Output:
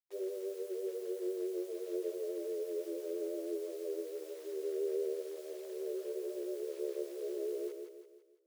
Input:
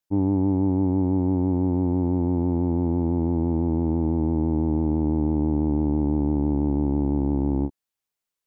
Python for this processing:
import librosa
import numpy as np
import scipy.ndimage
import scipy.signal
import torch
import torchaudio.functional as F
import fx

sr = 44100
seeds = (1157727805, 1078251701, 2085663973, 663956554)

p1 = fx.dereverb_blind(x, sr, rt60_s=0.97)
p2 = fx.rider(p1, sr, range_db=10, speed_s=0.5)
p3 = scipy.signal.sosfilt(scipy.signal.cheby1(6, 6, 620.0, 'lowpass', fs=sr, output='sos'), p2)
p4 = fx.chorus_voices(p3, sr, voices=2, hz=0.51, base_ms=24, depth_ms=3.6, mix_pct=70)
p5 = fx.quant_dither(p4, sr, seeds[0], bits=10, dither='none')
p6 = fx.brickwall_highpass(p5, sr, low_hz=350.0)
p7 = p6 + fx.echo_feedback(p6, sr, ms=168, feedback_pct=44, wet_db=-6, dry=0)
y = p7 * librosa.db_to_amplitude(4.5)